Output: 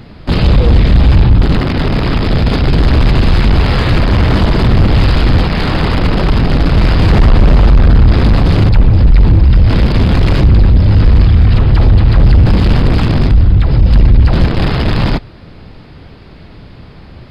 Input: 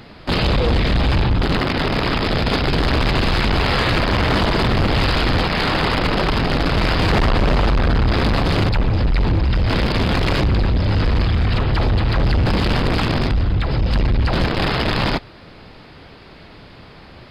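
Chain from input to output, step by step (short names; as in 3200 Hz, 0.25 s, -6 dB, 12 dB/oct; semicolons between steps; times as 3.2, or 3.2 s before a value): low shelf 280 Hz +11.5 dB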